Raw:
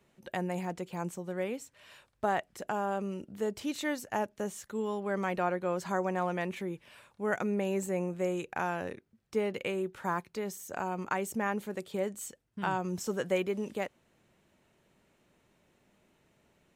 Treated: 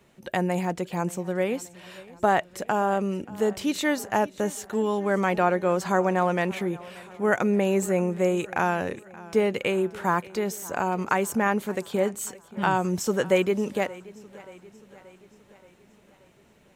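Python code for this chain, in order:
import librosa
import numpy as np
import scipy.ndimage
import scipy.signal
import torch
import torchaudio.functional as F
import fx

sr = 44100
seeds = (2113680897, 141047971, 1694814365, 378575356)

y = fx.echo_warbled(x, sr, ms=579, feedback_pct=56, rate_hz=2.8, cents=52, wet_db=-20.5)
y = F.gain(torch.from_numpy(y), 8.5).numpy()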